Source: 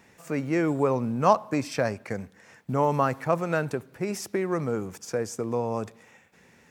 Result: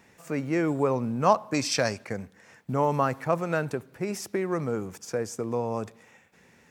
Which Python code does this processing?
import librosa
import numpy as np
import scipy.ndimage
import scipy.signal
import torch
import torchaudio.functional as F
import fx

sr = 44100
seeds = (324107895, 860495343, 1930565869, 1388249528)

y = fx.peak_eq(x, sr, hz=5300.0, db=12.5, octaves=2.0, at=(1.54, 2.05))
y = F.gain(torch.from_numpy(y), -1.0).numpy()